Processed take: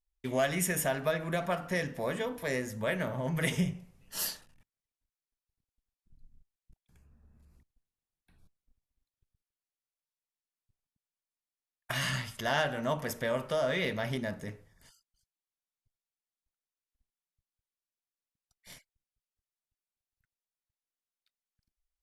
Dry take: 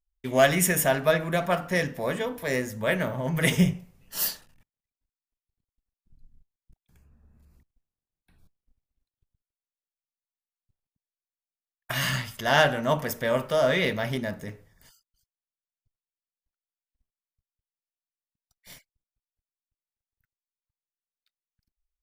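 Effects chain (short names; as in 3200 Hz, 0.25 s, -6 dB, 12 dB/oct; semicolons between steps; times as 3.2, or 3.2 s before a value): brick-wall FIR low-pass 13000 Hz; compressor 2:1, threshold -27 dBFS, peak gain reduction 7.5 dB; gain -3 dB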